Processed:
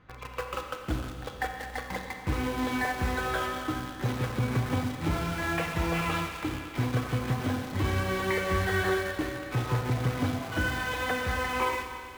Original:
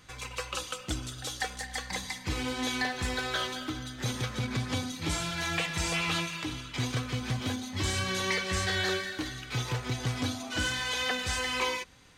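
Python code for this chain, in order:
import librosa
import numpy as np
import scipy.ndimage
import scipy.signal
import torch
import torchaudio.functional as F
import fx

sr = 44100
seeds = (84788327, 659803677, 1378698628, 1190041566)

p1 = scipy.signal.sosfilt(scipy.signal.butter(2, 1600.0, 'lowpass', fs=sr, output='sos'), x)
p2 = fx.quant_dither(p1, sr, seeds[0], bits=6, dither='none')
p3 = p1 + (p2 * 10.0 ** (-5.0 / 20.0))
y = fx.rev_schroeder(p3, sr, rt60_s=2.6, comb_ms=30, drr_db=5.0)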